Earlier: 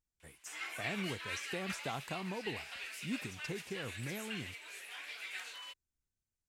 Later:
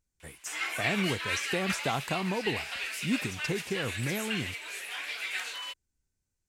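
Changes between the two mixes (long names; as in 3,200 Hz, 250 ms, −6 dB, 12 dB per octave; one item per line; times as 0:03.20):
speech +9.5 dB
background +9.5 dB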